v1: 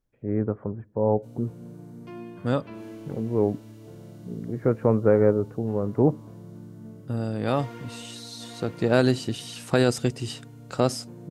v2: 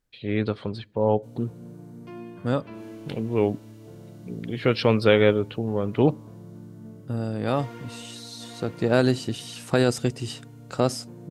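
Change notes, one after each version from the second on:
first voice: remove Bessel low-pass filter 930 Hz, order 8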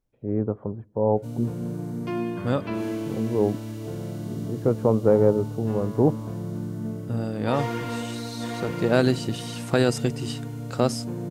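first voice: add low-pass filter 1,000 Hz 24 dB per octave
background +11.5 dB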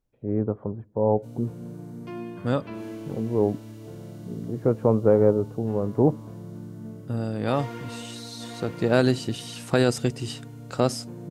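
background −7.5 dB

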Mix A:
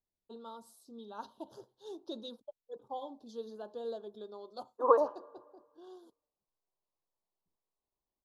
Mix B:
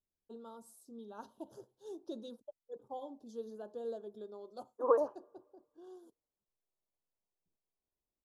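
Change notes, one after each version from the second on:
second voice: send −10.0 dB
master: add octave-band graphic EQ 1,000/4,000/8,000 Hz −6/−11/+4 dB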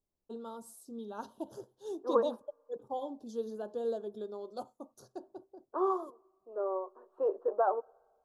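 first voice +6.5 dB
second voice: entry −2.75 s

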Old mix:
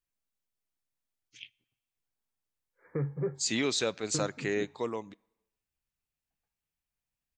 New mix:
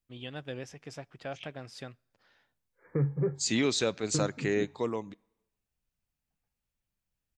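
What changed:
first voice: unmuted
master: add low-shelf EQ 310 Hz +6 dB

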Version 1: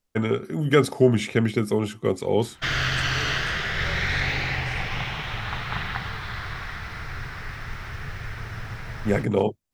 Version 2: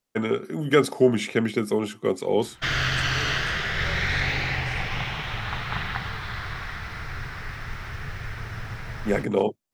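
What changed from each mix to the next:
first voice: add high-pass filter 180 Hz 12 dB per octave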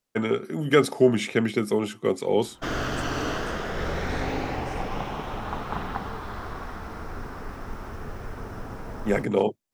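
background: add octave-band graphic EQ 125/250/500/1,000/2,000/4,000 Hz −10/+11/+5/+4/−12/−9 dB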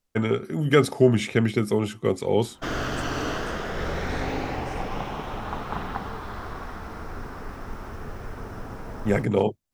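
first voice: remove high-pass filter 180 Hz 12 dB per octave

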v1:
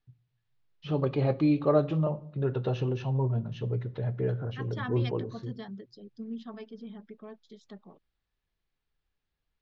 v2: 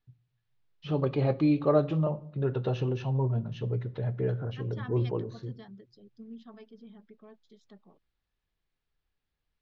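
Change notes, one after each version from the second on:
second voice −7.0 dB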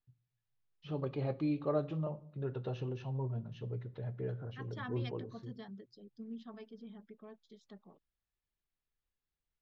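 first voice −9.5 dB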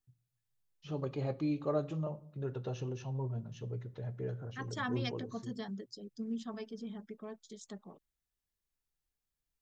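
second voice +7.0 dB
master: remove low-pass filter 4,300 Hz 24 dB per octave

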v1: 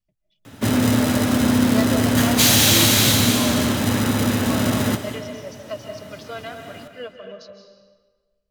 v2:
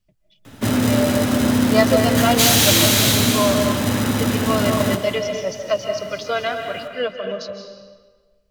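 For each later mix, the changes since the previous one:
speech +11.0 dB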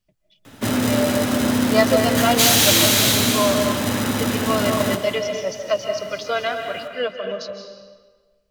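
master: add low-shelf EQ 180 Hz −6.5 dB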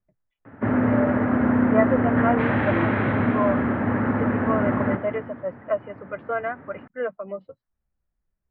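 speech: send off
master: add Butterworth low-pass 1,900 Hz 36 dB per octave

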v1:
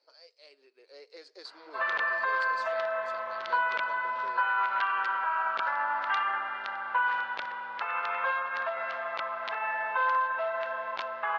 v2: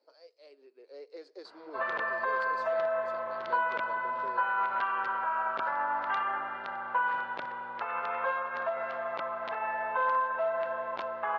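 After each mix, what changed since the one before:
master: add tilt shelving filter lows +8.5 dB, about 900 Hz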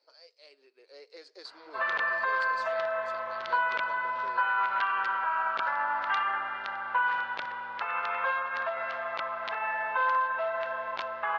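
background: remove high-pass filter 220 Hz 6 dB per octave
master: add tilt shelving filter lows −8.5 dB, about 900 Hz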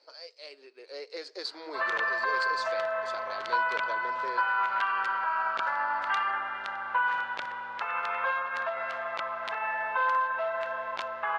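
speech +9.5 dB
background: remove low-pass filter 5,500 Hz 24 dB per octave

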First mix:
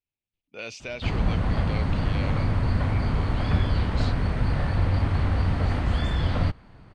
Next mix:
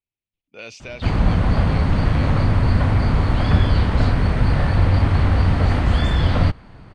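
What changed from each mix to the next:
background +7.0 dB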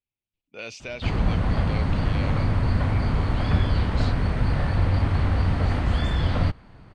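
background −5.5 dB

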